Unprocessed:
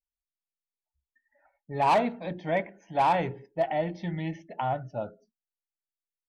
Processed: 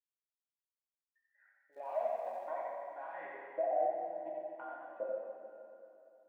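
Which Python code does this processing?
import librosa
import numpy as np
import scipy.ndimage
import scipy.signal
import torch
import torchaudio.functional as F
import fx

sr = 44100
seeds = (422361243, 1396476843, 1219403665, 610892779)

p1 = scipy.signal.sosfilt(scipy.signal.butter(4, 240.0, 'highpass', fs=sr, output='sos'), x)
p2 = fx.high_shelf(p1, sr, hz=4000.0, db=5.5)
p3 = fx.level_steps(p2, sr, step_db=17)
p4 = fx.filter_lfo_bandpass(p3, sr, shape='saw_up', hz=0.6, low_hz=480.0, high_hz=2000.0, q=5.5)
p5 = fx.notch_comb(p4, sr, f0_hz=440.0)
p6 = fx.filter_sweep_bandpass(p5, sr, from_hz=2100.0, to_hz=370.0, start_s=1.78, end_s=3.15, q=1.0)
p7 = fx.dmg_crackle(p6, sr, seeds[0], per_s=270.0, level_db=-69.0, at=(1.72, 2.38), fade=0.02)
p8 = p7 + fx.echo_single(p7, sr, ms=89, db=-5.0, dry=0)
p9 = fx.rev_plate(p8, sr, seeds[1], rt60_s=2.8, hf_ratio=0.95, predelay_ms=0, drr_db=-2.0)
y = p9 * librosa.db_to_amplitude(8.5)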